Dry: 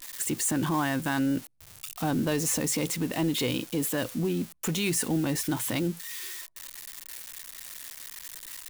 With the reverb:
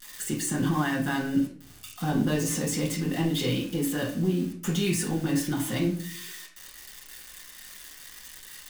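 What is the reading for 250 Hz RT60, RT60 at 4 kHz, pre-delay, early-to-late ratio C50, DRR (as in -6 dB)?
0.70 s, 0.35 s, 5 ms, 7.5 dB, -3.5 dB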